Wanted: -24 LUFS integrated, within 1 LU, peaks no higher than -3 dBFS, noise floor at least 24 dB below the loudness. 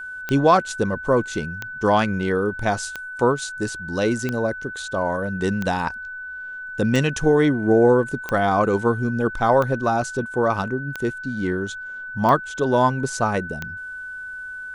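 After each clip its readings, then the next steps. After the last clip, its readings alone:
clicks found 11; steady tone 1.5 kHz; tone level -31 dBFS; loudness -21.5 LUFS; peak level -4.0 dBFS; loudness target -24.0 LUFS
-> de-click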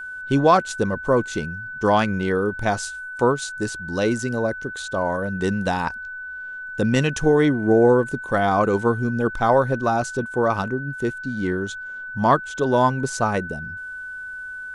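clicks found 0; steady tone 1.5 kHz; tone level -31 dBFS
-> band-stop 1.5 kHz, Q 30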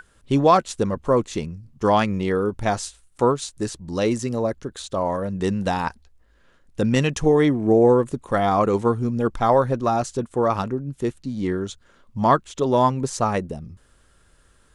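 steady tone not found; loudness -22.0 LUFS; peak level -4.0 dBFS; loudness target -24.0 LUFS
-> trim -2 dB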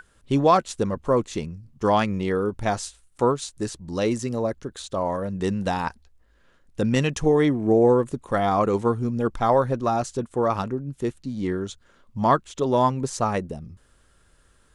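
loudness -24.0 LUFS; peak level -6.0 dBFS; noise floor -60 dBFS

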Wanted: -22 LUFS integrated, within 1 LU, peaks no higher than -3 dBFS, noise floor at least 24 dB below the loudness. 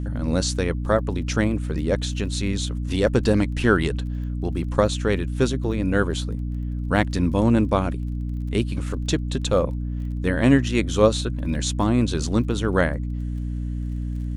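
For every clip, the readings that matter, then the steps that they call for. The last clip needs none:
tick rate 20 per s; hum 60 Hz; highest harmonic 300 Hz; hum level -24 dBFS; loudness -23.5 LUFS; peak level -3.0 dBFS; loudness target -22.0 LUFS
-> de-click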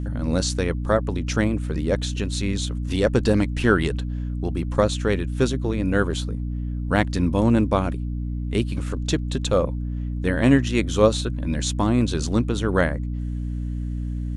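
tick rate 0.070 per s; hum 60 Hz; highest harmonic 300 Hz; hum level -24 dBFS
-> de-hum 60 Hz, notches 5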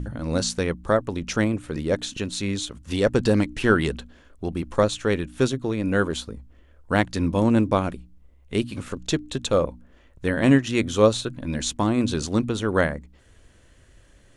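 hum not found; loudness -24.0 LUFS; peak level -4.0 dBFS; loudness target -22.0 LUFS
-> trim +2 dB; peak limiter -3 dBFS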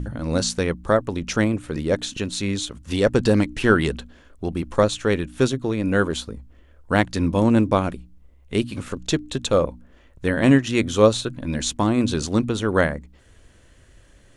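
loudness -22.0 LUFS; peak level -3.0 dBFS; noise floor -52 dBFS

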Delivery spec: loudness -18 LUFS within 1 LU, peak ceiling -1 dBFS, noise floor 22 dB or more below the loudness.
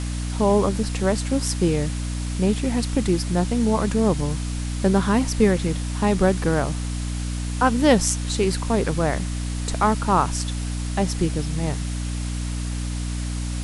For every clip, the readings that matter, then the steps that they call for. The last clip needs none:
hum 60 Hz; highest harmonic 300 Hz; hum level -24 dBFS; noise floor -27 dBFS; noise floor target -45 dBFS; loudness -23.0 LUFS; peak level -2.5 dBFS; loudness target -18.0 LUFS
-> de-hum 60 Hz, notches 5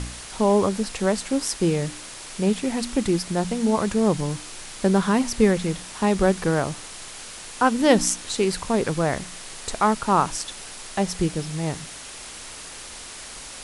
hum not found; noise floor -39 dBFS; noise floor target -45 dBFS
-> noise reduction 6 dB, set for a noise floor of -39 dBFS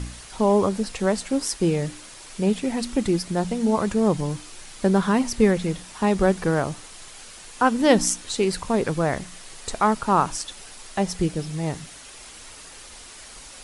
noise floor -43 dBFS; noise floor target -45 dBFS
-> noise reduction 6 dB, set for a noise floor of -43 dBFS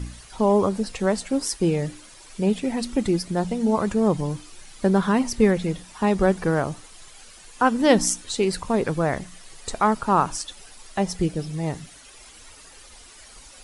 noise floor -47 dBFS; loudness -23.0 LUFS; peak level -2.5 dBFS; loudness target -18.0 LUFS
-> trim +5 dB; peak limiter -1 dBFS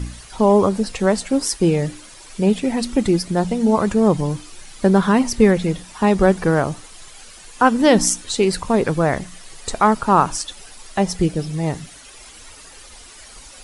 loudness -18.5 LUFS; peak level -1.0 dBFS; noise floor -42 dBFS

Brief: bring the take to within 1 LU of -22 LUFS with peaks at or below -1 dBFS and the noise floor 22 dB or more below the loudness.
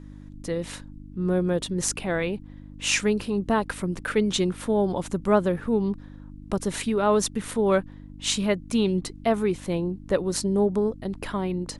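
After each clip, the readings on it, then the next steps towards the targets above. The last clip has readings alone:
hum 50 Hz; highest harmonic 300 Hz; hum level -41 dBFS; loudness -25.5 LUFS; peak level -6.5 dBFS; loudness target -22.0 LUFS
-> de-hum 50 Hz, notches 6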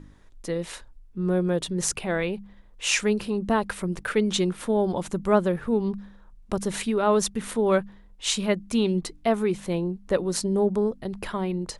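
hum not found; loudness -26.0 LUFS; peak level -6.5 dBFS; loudness target -22.0 LUFS
-> trim +4 dB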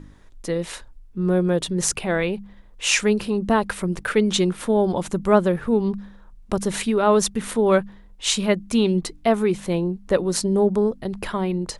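loudness -22.0 LUFS; peak level -2.5 dBFS; noise floor -47 dBFS

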